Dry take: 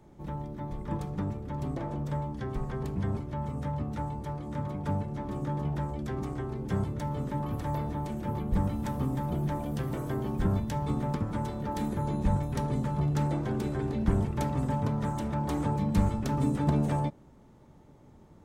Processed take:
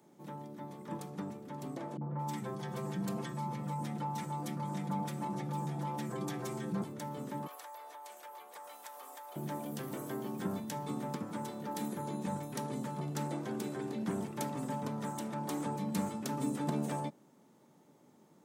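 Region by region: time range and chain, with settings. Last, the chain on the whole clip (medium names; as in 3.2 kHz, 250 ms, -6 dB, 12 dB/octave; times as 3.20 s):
1.97–6.82 s: comb 5.9 ms, depth 85% + three bands offset in time lows, mids, highs 40/220 ms, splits 310/1500 Hz + level flattener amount 50%
7.47–9.36 s: high-pass 620 Hz 24 dB/octave + compression, threshold -40 dBFS
whole clip: high-pass 170 Hz 24 dB/octave; treble shelf 5.2 kHz +11.5 dB; trim -5.5 dB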